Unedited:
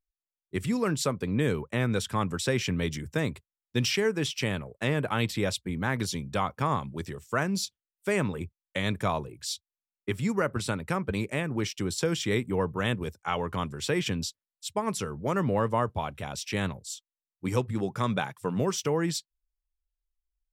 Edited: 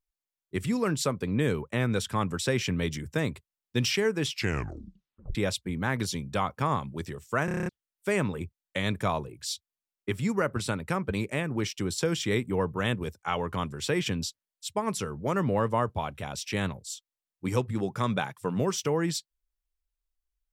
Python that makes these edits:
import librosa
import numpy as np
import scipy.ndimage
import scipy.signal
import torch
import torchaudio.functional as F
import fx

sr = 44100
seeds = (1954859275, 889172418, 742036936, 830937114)

y = fx.edit(x, sr, fx.tape_stop(start_s=4.29, length_s=1.06),
    fx.stutter_over(start_s=7.45, slice_s=0.03, count=8), tone=tone)